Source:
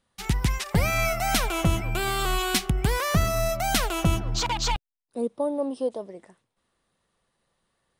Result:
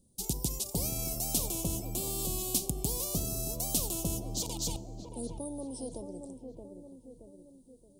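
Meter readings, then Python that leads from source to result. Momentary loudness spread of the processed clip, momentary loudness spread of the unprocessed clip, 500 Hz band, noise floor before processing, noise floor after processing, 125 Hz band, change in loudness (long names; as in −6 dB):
17 LU, 7 LU, −12.0 dB, −80 dBFS, −60 dBFS, −10.5 dB, −7.5 dB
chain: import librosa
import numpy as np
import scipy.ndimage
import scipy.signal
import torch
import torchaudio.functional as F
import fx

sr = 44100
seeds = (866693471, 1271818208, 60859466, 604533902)

p1 = scipy.signal.sosfilt(scipy.signal.cheby1(2, 1.0, [310.0, 8200.0], 'bandstop', fs=sr, output='sos'), x)
p2 = p1 + fx.echo_wet_lowpass(p1, sr, ms=624, feedback_pct=30, hz=2000.0, wet_db=-11, dry=0)
p3 = fx.rev_double_slope(p2, sr, seeds[0], early_s=0.32, late_s=1.7, knee_db=-18, drr_db=18.5)
y = fx.spectral_comp(p3, sr, ratio=2.0)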